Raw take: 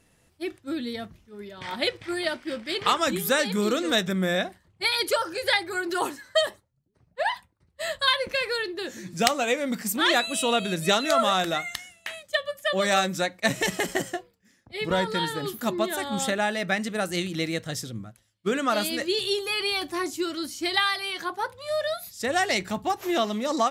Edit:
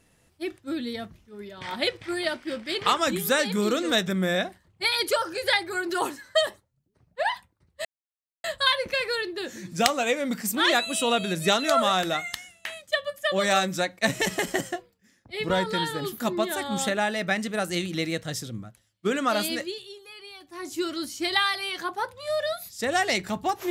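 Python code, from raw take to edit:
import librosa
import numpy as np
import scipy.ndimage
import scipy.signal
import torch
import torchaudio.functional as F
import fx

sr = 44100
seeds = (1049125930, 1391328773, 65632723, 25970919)

y = fx.edit(x, sr, fx.insert_silence(at_s=7.85, length_s=0.59),
    fx.fade_down_up(start_s=18.96, length_s=1.22, db=-17.5, fade_s=0.35, curve='qua'), tone=tone)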